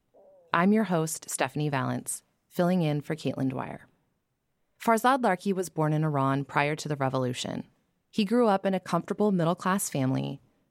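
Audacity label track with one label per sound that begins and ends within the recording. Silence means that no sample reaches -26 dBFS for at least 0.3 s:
0.540000	2.140000	sound
2.590000	3.710000	sound
4.860000	7.600000	sound
8.180000	10.300000	sound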